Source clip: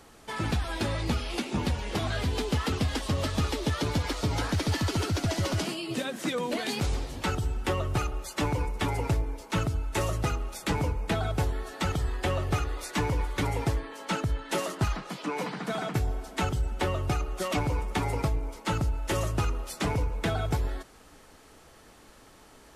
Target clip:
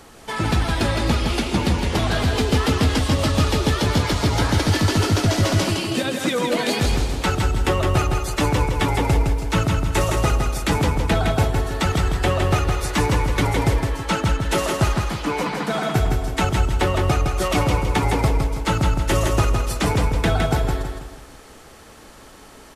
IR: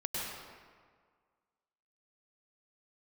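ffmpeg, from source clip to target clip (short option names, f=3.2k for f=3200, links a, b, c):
-af "aecho=1:1:162|324|486|648|810:0.596|0.232|0.0906|0.0353|0.0138,volume=8dB"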